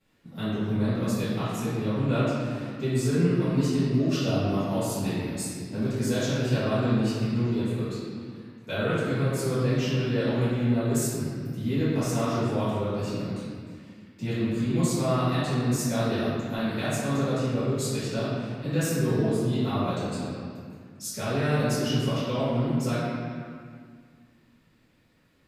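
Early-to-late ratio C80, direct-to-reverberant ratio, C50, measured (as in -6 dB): -1.0 dB, -16.0 dB, -4.0 dB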